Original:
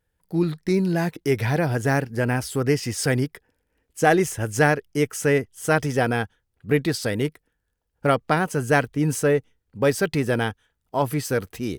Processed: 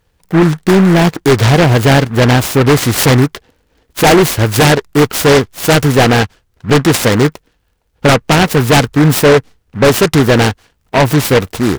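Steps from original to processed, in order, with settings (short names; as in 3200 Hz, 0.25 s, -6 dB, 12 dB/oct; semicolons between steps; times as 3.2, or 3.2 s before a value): sine folder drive 12 dB, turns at -3 dBFS; noise-modulated delay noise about 1200 Hz, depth 0.11 ms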